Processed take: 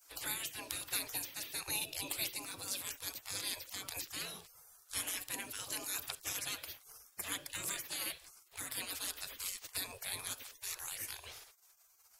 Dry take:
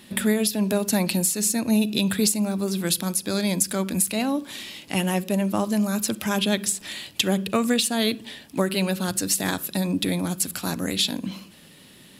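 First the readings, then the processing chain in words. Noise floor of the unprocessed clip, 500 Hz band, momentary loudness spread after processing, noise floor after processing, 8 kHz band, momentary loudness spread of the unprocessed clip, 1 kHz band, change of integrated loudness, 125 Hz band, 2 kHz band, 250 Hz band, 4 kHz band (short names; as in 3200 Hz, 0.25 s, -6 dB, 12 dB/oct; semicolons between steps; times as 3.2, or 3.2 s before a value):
-50 dBFS, -27.0 dB, 9 LU, -66 dBFS, -13.5 dB, 6 LU, -18.0 dB, -16.0 dB, -28.5 dB, -12.5 dB, -33.5 dB, -13.5 dB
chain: notches 50/100/150 Hz; spectral gate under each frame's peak -25 dB weak; dynamic EQ 960 Hz, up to -4 dB, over -55 dBFS, Q 0.7; gain -1.5 dB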